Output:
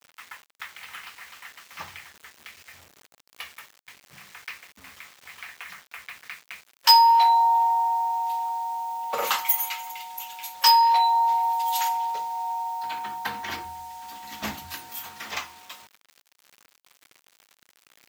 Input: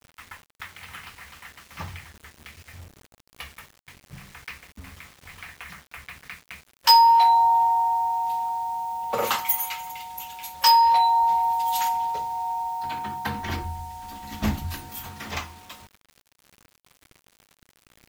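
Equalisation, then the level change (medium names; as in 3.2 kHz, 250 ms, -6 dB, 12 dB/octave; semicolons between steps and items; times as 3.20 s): high-pass 830 Hz 6 dB/octave; peaking EQ 10 kHz -4 dB 0.26 oct; +1.5 dB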